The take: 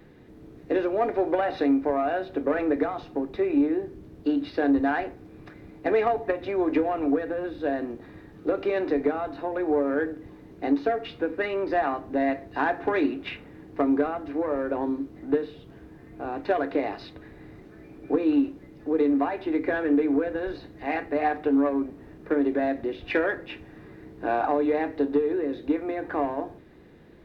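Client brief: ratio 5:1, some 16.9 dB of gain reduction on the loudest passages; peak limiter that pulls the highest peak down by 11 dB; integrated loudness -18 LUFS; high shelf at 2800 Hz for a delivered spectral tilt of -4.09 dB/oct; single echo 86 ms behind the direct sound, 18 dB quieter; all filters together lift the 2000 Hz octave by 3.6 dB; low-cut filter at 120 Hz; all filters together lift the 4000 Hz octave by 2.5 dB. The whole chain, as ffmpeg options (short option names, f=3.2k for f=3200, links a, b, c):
-af "highpass=120,equalizer=f=2k:t=o:g=6,highshelf=f=2.8k:g=-7.5,equalizer=f=4k:t=o:g=6.5,acompressor=threshold=-38dB:ratio=5,alimiter=level_in=11.5dB:limit=-24dB:level=0:latency=1,volume=-11.5dB,aecho=1:1:86:0.126,volume=26.5dB"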